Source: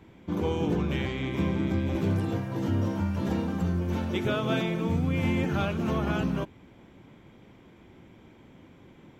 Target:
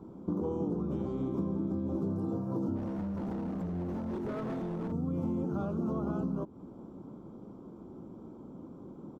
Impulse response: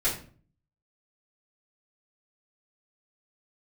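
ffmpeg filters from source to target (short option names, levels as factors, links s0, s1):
-filter_complex "[0:a]firequalizer=gain_entry='entry(110,0);entry(190,9);entry(370,8);entry(720,3);entry(1300,3);entry(1800,-26);entry(4800,-7)':delay=0.05:min_phase=1,acompressor=threshold=0.0355:ratio=6,asettb=1/sr,asplit=3[s0][s1][s2];[s0]atrim=end=2.764[s3];[s1]atrim=start=2.76:end=4.92,asetpts=PTS-STARTPTS,afade=t=in:d=0.004:c=qsin,afade=t=out:st=2.156:d=0.004:c=qsin,volume=35.5,asoftclip=hard,volume=0.0282[s4];[s2]atrim=start=4.916[s5];[s3][s4]acrossfade=d=0.004:c1=hsin:c2=qsin[s6];[s6][s5]acrossfade=d=0.004:c1=qsin:c2=hsin,volume=0.841"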